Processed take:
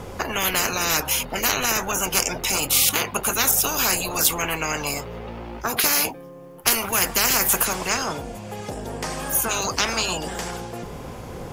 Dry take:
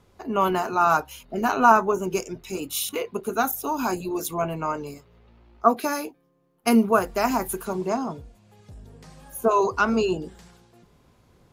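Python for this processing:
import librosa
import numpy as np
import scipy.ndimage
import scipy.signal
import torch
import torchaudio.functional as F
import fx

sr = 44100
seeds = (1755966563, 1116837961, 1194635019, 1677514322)

y = fx.graphic_eq_31(x, sr, hz=(500, 800, 4000), db=(6, 5, -6))
y = fx.spectral_comp(y, sr, ratio=10.0)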